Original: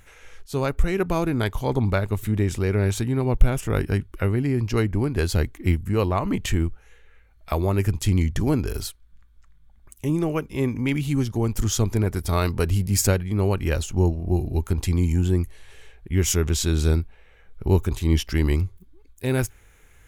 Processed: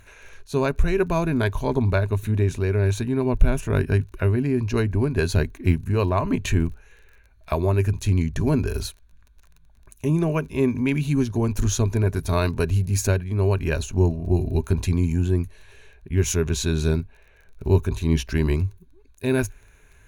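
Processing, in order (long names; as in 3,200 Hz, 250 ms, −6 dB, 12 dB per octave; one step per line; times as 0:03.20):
high-shelf EQ 5,600 Hz −5.5 dB
surface crackle 27 per second −42 dBFS
EQ curve with evenly spaced ripples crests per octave 1.5, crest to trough 8 dB
speech leveller 0.5 s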